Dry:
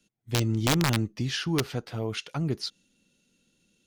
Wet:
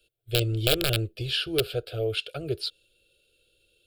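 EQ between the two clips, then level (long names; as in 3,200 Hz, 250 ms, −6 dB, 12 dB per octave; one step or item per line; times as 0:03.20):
phaser with its sweep stopped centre 440 Hz, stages 4
phaser with its sweep stopped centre 1,300 Hz, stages 8
+8.0 dB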